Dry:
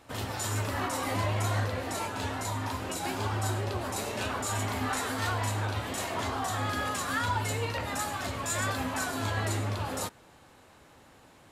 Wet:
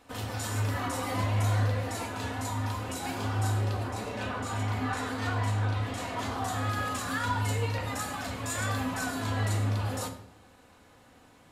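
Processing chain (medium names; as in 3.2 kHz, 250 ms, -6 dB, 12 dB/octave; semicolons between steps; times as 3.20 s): 3.83–6.16 s: treble shelf 5.3 kHz -> 9.3 kHz -12 dB; simulated room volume 2200 m³, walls furnished, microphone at 1.9 m; trim -3 dB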